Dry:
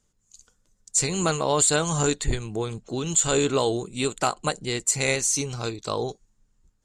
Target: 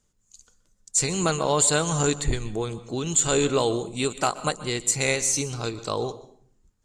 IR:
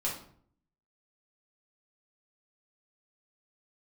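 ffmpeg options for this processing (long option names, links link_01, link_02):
-filter_complex "[0:a]asplit=2[link_01][link_02];[1:a]atrim=start_sample=2205,adelay=124[link_03];[link_02][link_03]afir=irnorm=-1:irlink=0,volume=-20dB[link_04];[link_01][link_04]amix=inputs=2:normalize=0"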